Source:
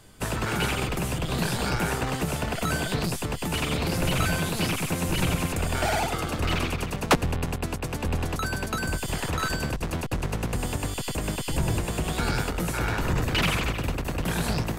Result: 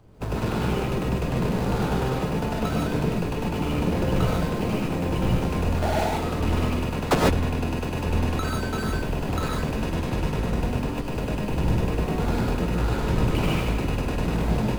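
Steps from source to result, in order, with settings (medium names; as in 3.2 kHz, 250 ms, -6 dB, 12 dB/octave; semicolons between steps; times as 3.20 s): median filter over 25 samples; gated-style reverb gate 170 ms rising, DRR -2.5 dB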